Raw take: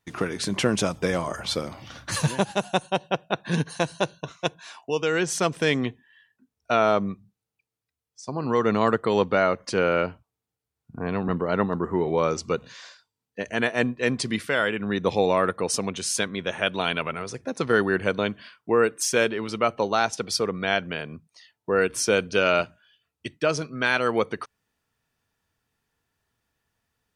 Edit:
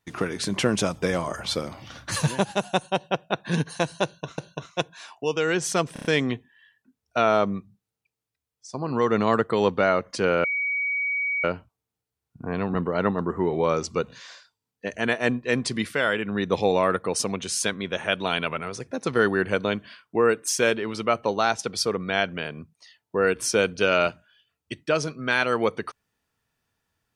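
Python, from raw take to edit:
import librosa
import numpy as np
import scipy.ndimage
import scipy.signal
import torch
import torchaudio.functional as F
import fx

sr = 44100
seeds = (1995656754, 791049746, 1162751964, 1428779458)

y = fx.edit(x, sr, fx.repeat(start_s=4.04, length_s=0.34, count=2),
    fx.stutter(start_s=5.59, slice_s=0.03, count=5),
    fx.insert_tone(at_s=9.98, length_s=1.0, hz=2260.0, db=-23.0), tone=tone)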